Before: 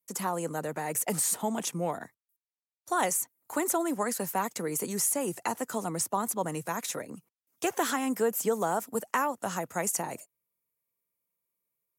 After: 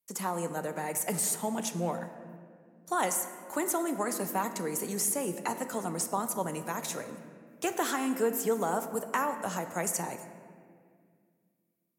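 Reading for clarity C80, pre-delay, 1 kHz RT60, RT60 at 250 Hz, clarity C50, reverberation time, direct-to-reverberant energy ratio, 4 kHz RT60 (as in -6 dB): 10.5 dB, 5 ms, 1.8 s, 2.9 s, 9.5 dB, 2.0 s, 7.5 dB, 1.2 s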